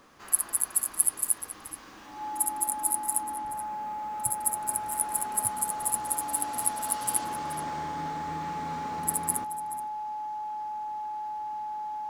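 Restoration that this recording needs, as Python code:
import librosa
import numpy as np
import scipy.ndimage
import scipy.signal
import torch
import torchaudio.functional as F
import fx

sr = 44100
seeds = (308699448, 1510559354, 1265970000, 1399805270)

y = fx.notch(x, sr, hz=850.0, q=30.0)
y = fx.fix_echo_inverse(y, sr, delay_ms=428, level_db=-14.5)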